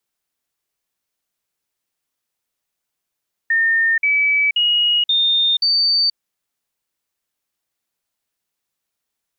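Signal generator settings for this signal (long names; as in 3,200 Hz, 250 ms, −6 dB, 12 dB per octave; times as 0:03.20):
stepped sweep 1,820 Hz up, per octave 3, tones 5, 0.48 s, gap 0.05 s −13 dBFS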